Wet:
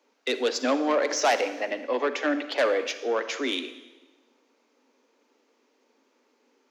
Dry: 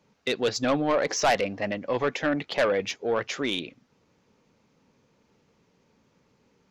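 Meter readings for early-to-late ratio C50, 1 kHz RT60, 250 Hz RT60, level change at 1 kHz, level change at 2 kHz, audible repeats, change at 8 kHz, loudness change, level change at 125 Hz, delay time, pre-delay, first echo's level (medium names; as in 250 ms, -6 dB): 11.0 dB, 1.1 s, 1.2 s, +0.5 dB, +0.5 dB, no echo, +0.5 dB, 0.0 dB, under -25 dB, no echo, 34 ms, no echo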